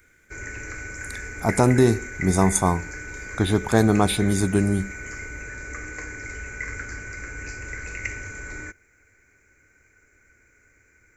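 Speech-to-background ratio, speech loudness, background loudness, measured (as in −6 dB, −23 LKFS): 12.5 dB, −21.5 LKFS, −34.0 LKFS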